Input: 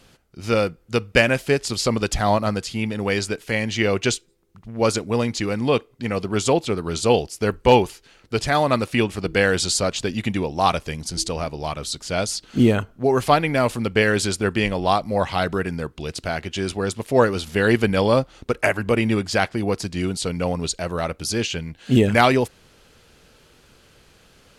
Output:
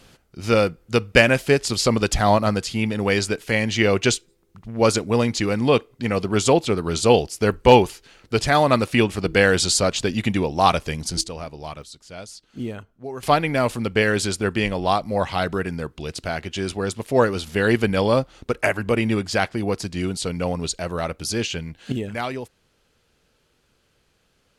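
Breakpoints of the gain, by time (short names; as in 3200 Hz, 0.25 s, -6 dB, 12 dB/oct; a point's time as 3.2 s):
+2 dB
from 11.21 s -6.5 dB
from 11.82 s -14 dB
from 13.23 s -1 dB
from 21.92 s -12 dB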